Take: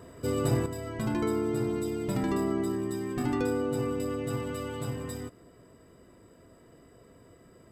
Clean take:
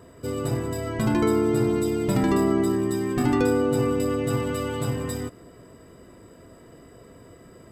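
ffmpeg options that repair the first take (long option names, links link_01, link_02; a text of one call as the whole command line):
ffmpeg -i in.wav -af "asetnsamples=nb_out_samples=441:pad=0,asendcmd='0.66 volume volume 7.5dB',volume=0dB" out.wav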